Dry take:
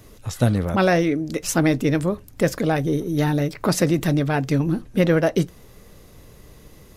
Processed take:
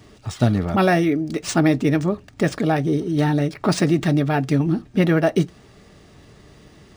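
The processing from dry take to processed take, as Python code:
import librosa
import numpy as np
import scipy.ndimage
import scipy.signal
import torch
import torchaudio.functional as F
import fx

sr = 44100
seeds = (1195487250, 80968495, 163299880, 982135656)

y = fx.low_shelf(x, sr, hz=62.0, db=-7.0)
y = fx.notch_comb(y, sr, f0_hz=510.0)
y = np.interp(np.arange(len(y)), np.arange(len(y))[::3], y[::3])
y = y * librosa.db_to_amplitude(2.5)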